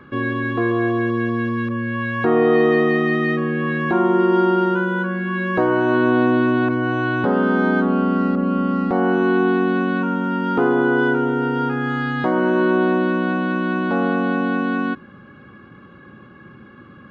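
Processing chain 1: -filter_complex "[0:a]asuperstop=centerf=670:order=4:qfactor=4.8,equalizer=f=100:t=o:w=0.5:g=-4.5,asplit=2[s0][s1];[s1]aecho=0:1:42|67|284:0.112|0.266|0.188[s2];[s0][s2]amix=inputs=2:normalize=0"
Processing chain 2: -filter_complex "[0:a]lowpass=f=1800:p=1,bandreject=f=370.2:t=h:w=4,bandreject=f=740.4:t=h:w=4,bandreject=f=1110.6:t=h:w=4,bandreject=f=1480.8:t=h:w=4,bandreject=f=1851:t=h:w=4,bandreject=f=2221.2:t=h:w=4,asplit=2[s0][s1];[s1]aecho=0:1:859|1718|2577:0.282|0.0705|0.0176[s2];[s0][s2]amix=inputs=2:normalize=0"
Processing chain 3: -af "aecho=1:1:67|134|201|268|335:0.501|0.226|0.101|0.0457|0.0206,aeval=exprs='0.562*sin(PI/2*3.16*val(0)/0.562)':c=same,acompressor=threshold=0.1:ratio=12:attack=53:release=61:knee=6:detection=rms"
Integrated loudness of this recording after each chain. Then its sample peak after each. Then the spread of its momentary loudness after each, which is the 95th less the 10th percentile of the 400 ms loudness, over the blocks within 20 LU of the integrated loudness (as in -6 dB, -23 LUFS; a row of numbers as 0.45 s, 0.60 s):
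-19.5 LUFS, -21.0 LUFS, -20.0 LUFS; -5.5 dBFS, -6.5 dBFS, -8.0 dBFS; 7 LU, 5 LU, 8 LU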